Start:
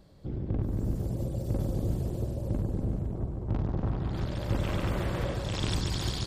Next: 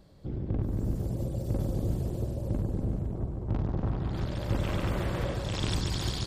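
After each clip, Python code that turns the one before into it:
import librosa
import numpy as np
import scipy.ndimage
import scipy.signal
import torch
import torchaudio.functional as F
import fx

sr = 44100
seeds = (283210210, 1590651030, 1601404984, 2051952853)

y = x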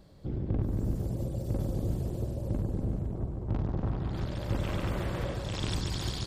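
y = fx.rider(x, sr, range_db=4, speed_s=2.0)
y = F.gain(torch.from_numpy(y), -1.5).numpy()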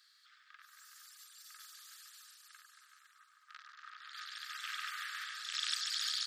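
y = scipy.signal.sosfilt(scipy.signal.cheby1(6, 6, 1200.0, 'highpass', fs=sr, output='sos'), x)
y = F.gain(torch.from_numpy(y), 5.5).numpy()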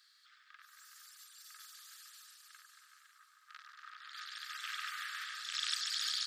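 y = fx.echo_feedback(x, sr, ms=547, feedback_pct=48, wet_db=-15)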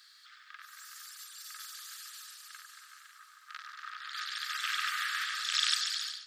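y = fx.fade_out_tail(x, sr, length_s=0.66)
y = fx.echo_bbd(y, sr, ms=91, stages=4096, feedback_pct=63, wet_db=-16.0)
y = F.gain(torch.from_numpy(y), 8.5).numpy()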